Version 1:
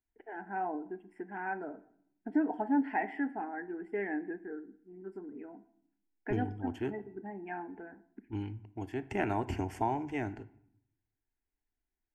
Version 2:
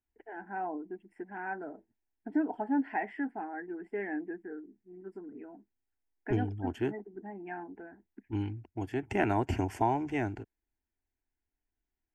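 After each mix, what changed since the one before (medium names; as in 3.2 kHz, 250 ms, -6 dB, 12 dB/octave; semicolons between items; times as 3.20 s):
second voice +4.0 dB; reverb: off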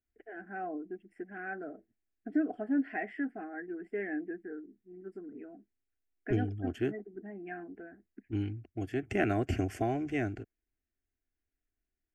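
master: add Butterworth band-stop 910 Hz, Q 2.4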